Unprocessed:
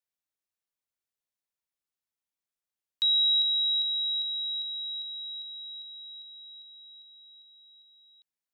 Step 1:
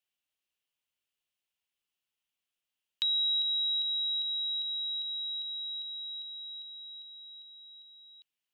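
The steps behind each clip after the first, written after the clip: peaking EQ 2.9 kHz +13 dB 0.57 oct; compression 2:1, threshold -36 dBFS, peak gain reduction 9.5 dB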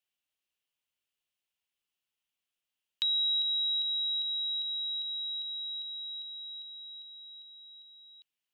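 no audible change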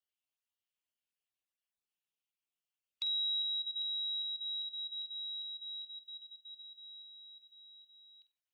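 random holes in the spectrogram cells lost 22%; flutter echo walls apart 8.2 m, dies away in 0.24 s; trim -7 dB

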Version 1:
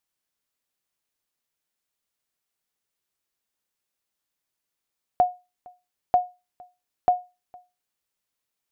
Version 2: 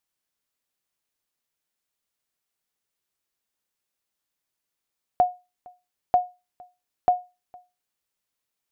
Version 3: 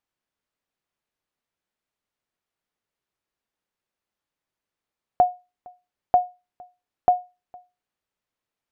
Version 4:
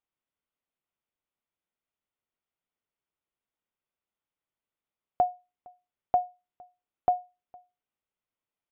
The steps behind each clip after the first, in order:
no audible change
low-pass 1.9 kHz 6 dB/octave; trim +3 dB
band-stop 1.7 kHz, Q 12; resampled via 8 kHz; trim -6 dB

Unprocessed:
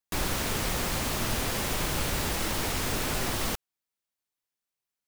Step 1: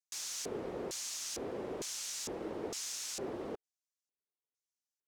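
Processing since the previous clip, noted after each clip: LFO band-pass square 1.1 Hz 410–6300 Hz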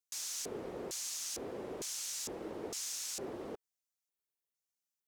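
treble shelf 8.1 kHz +8 dB; trim -2.5 dB

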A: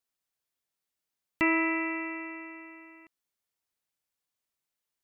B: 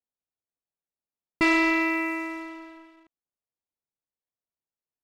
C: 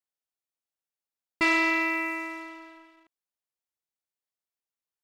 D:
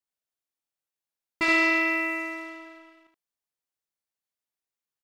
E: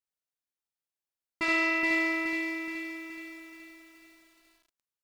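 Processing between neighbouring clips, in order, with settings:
level-controlled noise filter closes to 880 Hz, open at -24 dBFS; waveshaping leveller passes 2
bass shelf 400 Hz -9.5 dB
early reflections 20 ms -10.5 dB, 74 ms -3.5 dB; trim -1.5 dB
bit-crushed delay 423 ms, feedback 55%, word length 9-bit, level -3 dB; trim -5 dB

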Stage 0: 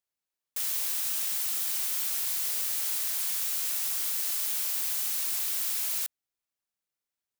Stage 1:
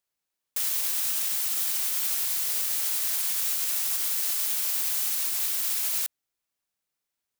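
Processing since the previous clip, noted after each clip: peak limiter -21.5 dBFS, peak gain reduction 4.5 dB; trim +4.5 dB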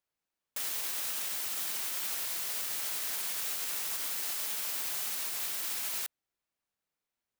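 treble shelf 3.5 kHz -8.5 dB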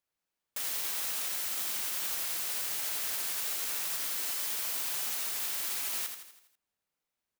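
feedback delay 82 ms, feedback 51%, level -7 dB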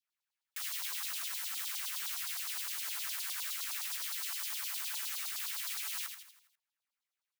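LFO high-pass saw down 9.7 Hz 850–4500 Hz; de-hum 60.95 Hz, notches 16; trim -5.5 dB

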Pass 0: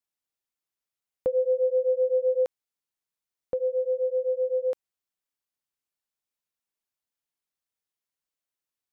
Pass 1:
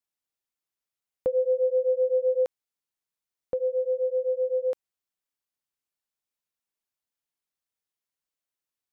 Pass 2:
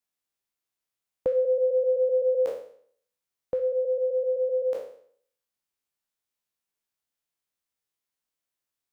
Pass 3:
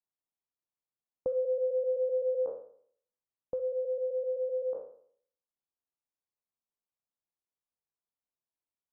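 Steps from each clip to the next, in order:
no audible change
spectral sustain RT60 0.58 s
steep low-pass 1.2 kHz 36 dB/octave; trim -6.5 dB

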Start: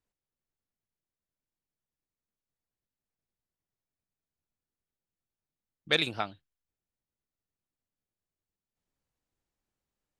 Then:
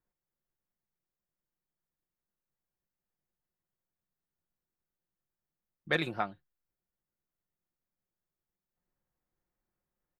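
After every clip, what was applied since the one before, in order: high-order bell 5.1 kHz -11.5 dB 2.3 oct; comb 5.6 ms, depth 39%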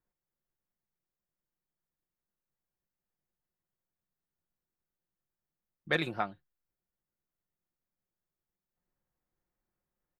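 no audible change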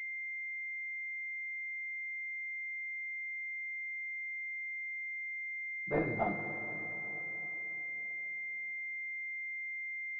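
two-slope reverb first 0.3 s, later 4.4 s, from -18 dB, DRR -9.5 dB; class-D stage that switches slowly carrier 2.1 kHz; trim -7 dB

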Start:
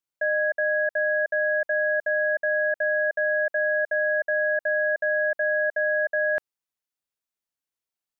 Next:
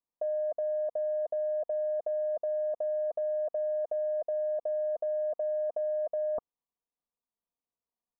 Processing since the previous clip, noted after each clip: steep low-pass 1.2 kHz 96 dB/octave; comb 4.2 ms, depth 43%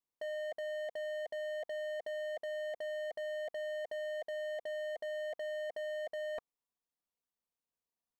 overload inside the chain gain 36 dB; trim -2 dB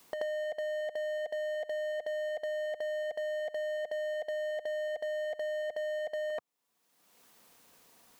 reverse echo 82 ms -16 dB; three bands compressed up and down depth 100%; trim +3.5 dB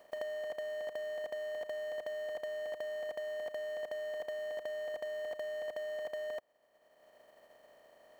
spectral levelling over time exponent 0.2; upward expansion 2.5:1, over -47 dBFS; trim -4.5 dB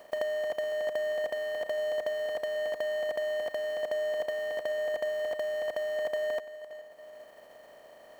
backward echo that repeats 426 ms, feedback 44%, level -14 dB; trim +8 dB

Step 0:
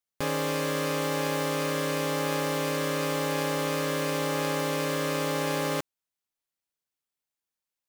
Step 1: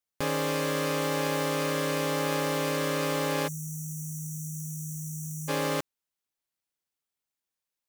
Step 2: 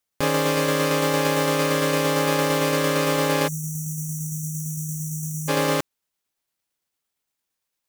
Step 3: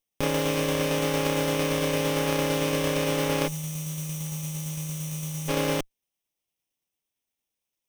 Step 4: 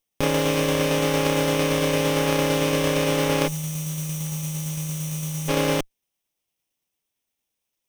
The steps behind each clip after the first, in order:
spectral selection erased 3.48–5.48 s, 210–5700 Hz
tremolo saw down 8.8 Hz, depth 30%; trim +8.5 dB
comb filter that takes the minimum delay 0.34 ms; trim -3 dB
tracing distortion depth 0.023 ms; trim +4 dB

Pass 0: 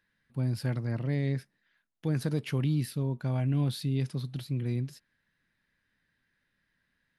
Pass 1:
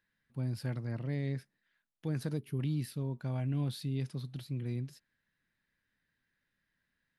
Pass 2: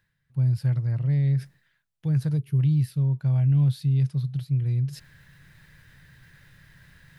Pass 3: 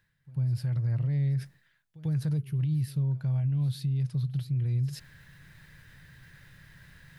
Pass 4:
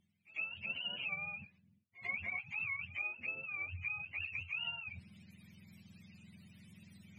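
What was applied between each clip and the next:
time-frequency box 2.38–2.59 s, 450–9100 Hz -13 dB; trim -5.5 dB
resonant low shelf 180 Hz +7.5 dB, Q 3; reverse; upward compressor, threshold -33 dBFS; reverse; trim +1 dB
peak limiter -23 dBFS, peak gain reduction 8 dB; pre-echo 95 ms -19 dB
spectrum inverted on a logarithmic axis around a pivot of 580 Hz; low-pass that closes with the level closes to 1.4 kHz, closed at -26.5 dBFS; trim -5 dB

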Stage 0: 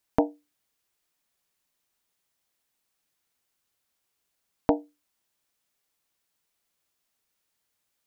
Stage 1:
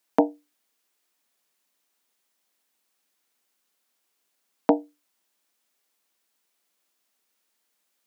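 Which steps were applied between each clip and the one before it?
steep high-pass 190 Hz; trim +3.5 dB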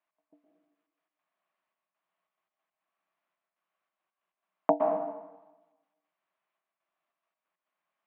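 trance gate "x..xxx.x.x.xxxx" 139 bpm -60 dB; cabinet simulation 160–2700 Hz, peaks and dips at 170 Hz +10 dB, 240 Hz -10 dB, 450 Hz -8 dB, 650 Hz +9 dB, 1.1 kHz +9 dB; plate-style reverb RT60 1.1 s, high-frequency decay 0.85×, pre-delay 105 ms, DRR 1.5 dB; trim -7 dB

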